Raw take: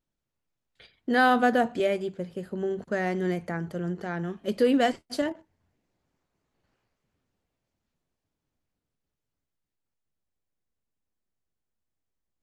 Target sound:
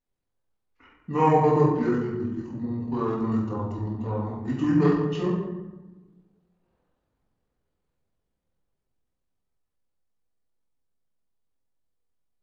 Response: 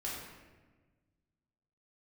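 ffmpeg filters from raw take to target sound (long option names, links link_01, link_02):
-filter_complex "[0:a]equalizer=frequency=870:width=0.73:gain=6[link_01];[1:a]atrim=start_sample=2205,asetrate=48510,aresample=44100[link_02];[link_01][link_02]afir=irnorm=-1:irlink=0,asetrate=26990,aresample=44100,atempo=1.63392,volume=-1.5dB"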